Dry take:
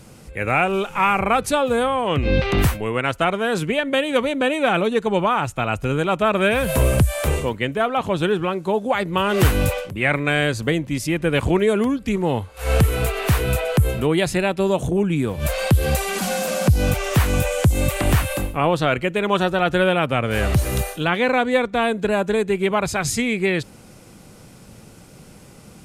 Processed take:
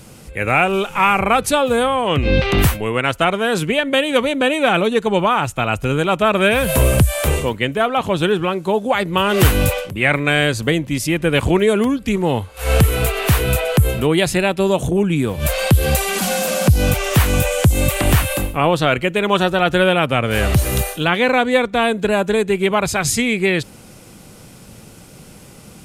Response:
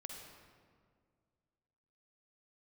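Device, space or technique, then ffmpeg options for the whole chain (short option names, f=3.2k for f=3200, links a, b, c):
presence and air boost: -af "equalizer=f=3.1k:t=o:w=0.77:g=2.5,highshelf=f=9.2k:g=6,volume=3dB"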